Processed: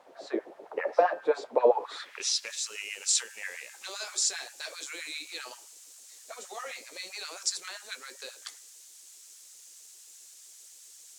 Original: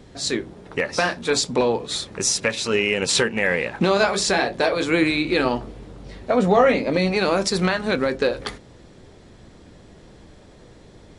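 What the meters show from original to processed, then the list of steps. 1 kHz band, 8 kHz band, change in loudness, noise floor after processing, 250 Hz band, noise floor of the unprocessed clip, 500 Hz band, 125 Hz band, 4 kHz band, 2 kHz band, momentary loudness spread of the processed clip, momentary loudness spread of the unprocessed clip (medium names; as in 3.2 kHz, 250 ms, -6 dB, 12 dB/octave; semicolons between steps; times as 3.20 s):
-9.5 dB, -4.5 dB, -10.5 dB, -53 dBFS, -22.5 dB, -48 dBFS, -10.5 dB, under -40 dB, -9.5 dB, -15.5 dB, 22 LU, 10 LU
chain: de-hum 104.8 Hz, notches 32; LFO high-pass sine 7.6 Hz 300–1600 Hz; added noise white -44 dBFS; band-pass sweep 640 Hz -> 7.1 kHz, 1.69–2.53 s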